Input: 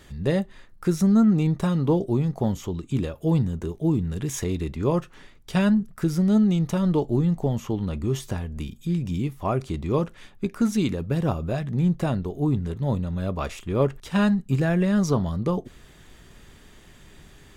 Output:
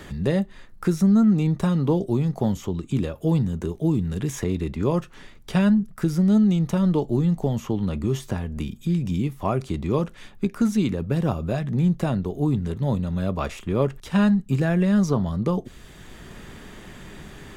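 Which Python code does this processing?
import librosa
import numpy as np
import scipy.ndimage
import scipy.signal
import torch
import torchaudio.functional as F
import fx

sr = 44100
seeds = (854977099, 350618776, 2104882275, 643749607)

y = fx.peak_eq(x, sr, hz=200.0, db=3.0, octaves=0.32)
y = fx.band_squash(y, sr, depth_pct=40)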